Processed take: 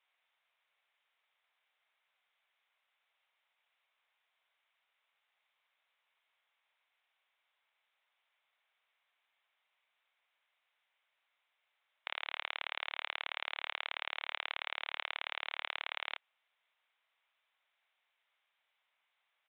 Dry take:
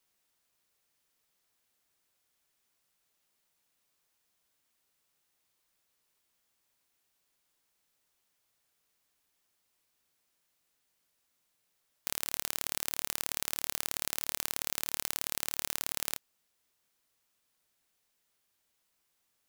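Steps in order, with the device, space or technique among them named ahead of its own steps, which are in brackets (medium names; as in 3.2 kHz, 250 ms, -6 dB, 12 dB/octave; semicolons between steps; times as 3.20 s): musical greeting card (resampled via 8 kHz; high-pass 640 Hz 24 dB/octave; peaking EQ 2.2 kHz +5 dB 0.25 oct); trim +2.5 dB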